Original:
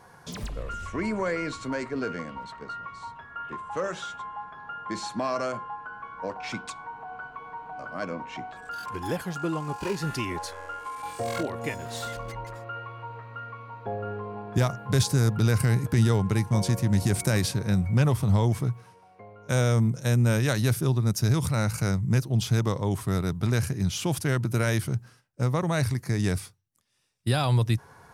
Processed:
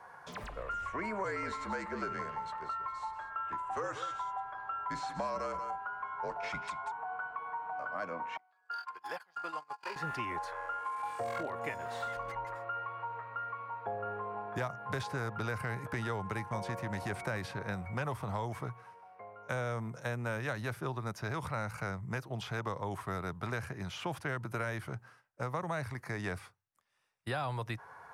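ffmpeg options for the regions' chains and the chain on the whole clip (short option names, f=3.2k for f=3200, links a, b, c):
-filter_complex "[0:a]asettb=1/sr,asplit=3[a][b][c];[a]atrim=end=1.244[d];[b]atrim=start=1.24:end=6.92,asetpts=PTS-STARTPTS,afade=t=in:d=0.004:c=qsin,afade=t=out:st=5.676:d=0.004:c=qsin,afreqshift=-53,bass=f=250:g=2,treble=f=4k:g=8,aecho=1:1:185:0.237,atrim=end_sample=250488[e];[c]atrim=start=6.916[f];[d][e]acrossfade=d=0.004:c1=hsin:c2=qsin[g];[g][f]acrossfade=d=0.004:c1=qsin:c2=hsin,asettb=1/sr,asplit=3[h][i][j];[h]atrim=end=8.374[k];[i]atrim=start=8.37:end=9.96,asetpts=PTS-STARTPTS,afade=t=in:d=0.004:c=qsin,afade=t=out:st=1.586:d=0.004:c=qsin,highpass=f=1.2k:p=1,agate=range=-26dB:threshold=-39dB:ratio=16:release=100:detection=peak,equalizer=f=4.7k:w=6.1:g=14.5[l];[j]atrim=start=9.956[m];[k][l]acrossfade=d=0.004:c1=hsin:c2=qsin[n];[n][m]acrossfade=d=0.004:c1=qsin:c2=hsin,acrossover=split=580 2100:gain=0.158 1 0.178[o][p][q];[o][p][q]amix=inputs=3:normalize=0,acrossover=split=300|4300[r][s][t];[r]acompressor=threshold=-41dB:ratio=4[u];[s]acompressor=threshold=-38dB:ratio=4[v];[t]acompressor=threshold=-60dB:ratio=4[w];[u][v][w]amix=inputs=3:normalize=0,volume=3dB"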